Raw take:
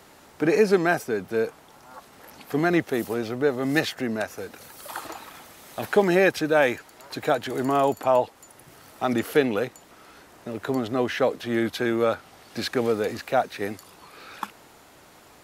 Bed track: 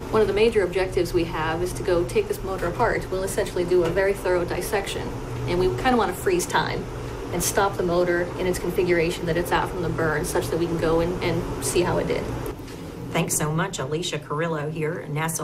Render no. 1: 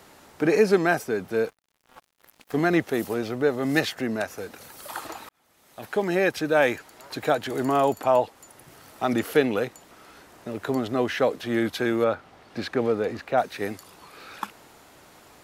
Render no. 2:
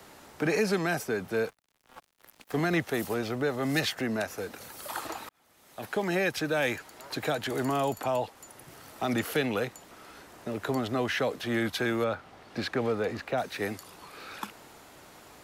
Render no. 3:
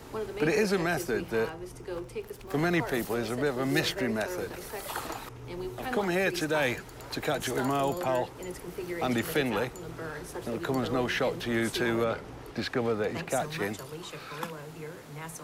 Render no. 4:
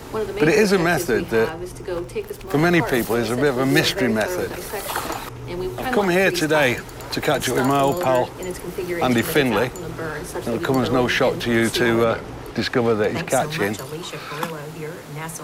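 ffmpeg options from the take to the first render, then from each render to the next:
-filter_complex "[0:a]asettb=1/sr,asplit=3[s0][s1][s2];[s0]atrim=end=1.454[s3];[s1]atrim=start=1.45:end=2.57,asetpts=PTS-STARTPTS,afade=t=in:d=0.004:c=qsin,afade=t=out:st=1.116:d=0.004:c=qsin,aeval=exprs='sgn(val(0))*max(abs(val(0))-0.00668,0)':c=same[s4];[s2]atrim=start=2.566[s5];[s3][s4]acrossfade=d=0.004:c1=hsin:c2=qsin[s6];[s6][s5]acrossfade=d=0.004:c1=qsin:c2=hsin,asettb=1/sr,asplit=3[s7][s8][s9];[s7]atrim=end=12.044[s10];[s8]atrim=start=12.04:end=13.38,asetpts=PTS-STARTPTS,afade=t=in:d=0.004:c=qsin,afade=t=out:st=1.336:d=0.004:c=qsin,lowpass=f=2200:p=1[s11];[s9]atrim=start=13.376[s12];[s10][s11]acrossfade=d=0.004:c1=hsin:c2=qsin[s13];[s13][s12]acrossfade=d=0.004:c1=qsin:c2=hsin,asplit=2[s14][s15];[s14]atrim=end=5.29,asetpts=PTS-STARTPTS,afade=t=out:st=5.286:d=0.004:c=hsin[s16];[s15]atrim=start=5.29,asetpts=PTS-STARTPTS,afade=t=in:d=1.37[s17];[s16][s17]concat=n=2:v=0:a=1"
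-filter_complex "[0:a]acrossover=split=210|520|2400[s0][s1][s2][s3];[s1]acompressor=threshold=0.0178:ratio=6[s4];[s2]alimiter=limit=0.0631:level=0:latency=1[s5];[s0][s4][s5][s3]amix=inputs=4:normalize=0"
-filter_complex "[1:a]volume=0.168[s0];[0:a][s0]amix=inputs=2:normalize=0"
-af "volume=3.16"

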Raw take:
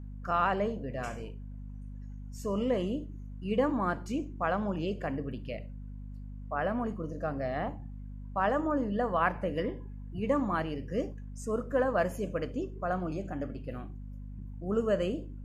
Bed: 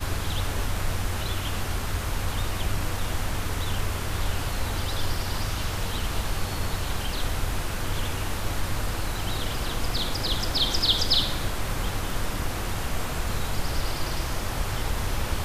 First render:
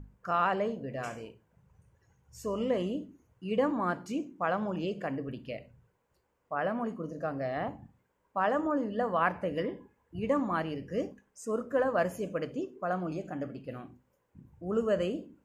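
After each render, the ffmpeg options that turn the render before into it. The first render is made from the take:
-af "bandreject=f=50:t=h:w=6,bandreject=f=100:t=h:w=6,bandreject=f=150:t=h:w=6,bandreject=f=200:t=h:w=6,bandreject=f=250:t=h:w=6"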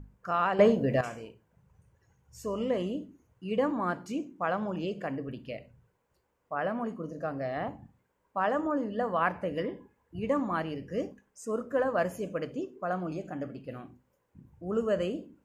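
-filter_complex "[0:a]asplit=3[s0][s1][s2];[s0]atrim=end=0.592[s3];[s1]atrim=start=0.588:end=1.012,asetpts=PTS-STARTPTS,volume=3.55[s4];[s2]atrim=start=1.008[s5];[s3][s4]acrossfade=d=0.004:c1=hsin:c2=hsin[s6];[s6][s5]acrossfade=d=0.004:c1=hsin:c2=hsin"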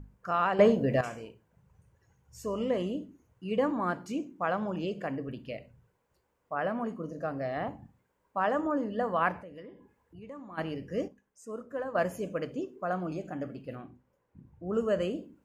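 -filter_complex "[0:a]asplit=3[s0][s1][s2];[s0]afade=t=out:st=9.41:d=0.02[s3];[s1]acompressor=threshold=0.00178:ratio=2:attack=3.2:release=140:knee=1:detection=peak,afade=t=in:st=9.41:d=0.02,afade=t=out:st=10.57:d=0.02[s4];[s2]afade=t=in:st=10.57:d=0.02[s5];[s3][s4][s5]amix=inputs=3:normalize=0,asettb=1/sr,asplit=3[s6][s7][s8];[s6]atrim=end=13.754[s9];[s7]atrim=start=13.75:end=14.74,asetpts=PTS-STARTPTS,afade=t=in:d=0.004:c=qsin,afade=t=out:st=0.986:d=0.004:c=qsin,highshelf=f=3900:g=-10[s10];[s8]atrim=start=14.736[s11];[s9][s10]acrossfade=d=0.004:c1=hsin:c2=qsin[s12];[s12][s11]acrossfade=d=0.004:c1=qsin:c2=hsin,asplit=3[s13][s14][s15];[s13]atrim=end=11.082[s16];[s14]atrim=start=11.078:end=11.952,asetpts=PTS-STARTPTS,volume=0.422[s17];[s15]atrim=start=11.948[s18];[s16][s17]acrossfade=d=0.004:c1=hsin:c2=hsin[s19];[s19][s18]acrossfade=d=0.004:c1=hsin:c2=hsin"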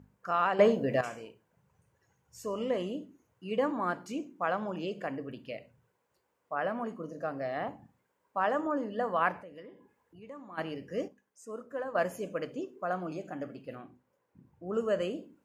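-af "highpass=84,lowshelf=f=210:g=-8"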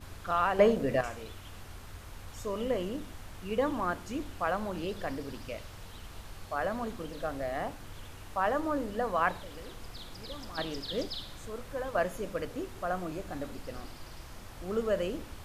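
-filter_complex "[1:a]volume=0.126[s0];[0:a][s0]amix=inputs=2:normalize=0"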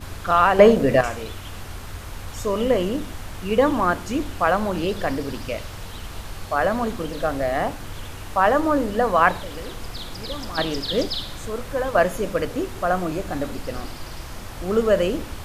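-af "volume=3.76,alimiter=limit=0.891:level=0:latency=1"

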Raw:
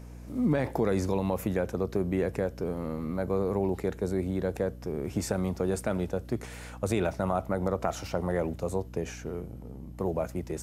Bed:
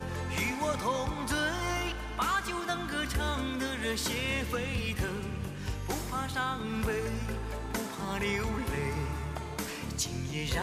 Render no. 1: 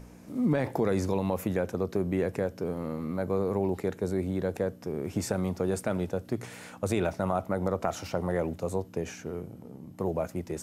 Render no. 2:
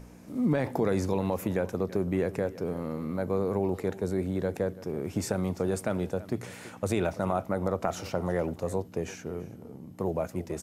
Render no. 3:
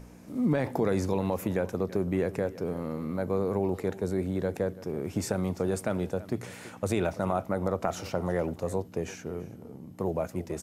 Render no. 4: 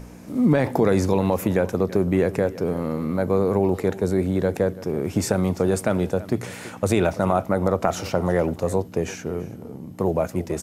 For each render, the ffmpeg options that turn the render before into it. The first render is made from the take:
-af "bandreject=f=60:t=h:w=4,bandreject=f=120:t=h:w=4"
-filter_complex "[0:a]asplit=2[s0][s1];[s1]adelay=332.4,volume=0.141,highshelf=f=4000:g=-7.48[s2];[s0][s2]amix=inputs=2:normalize=0"
-af anull
-af "volume=2.51"

